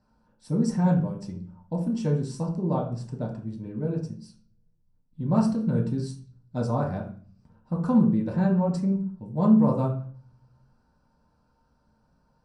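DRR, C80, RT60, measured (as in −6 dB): −3.5 dB, 12.0 dB, 0.40 s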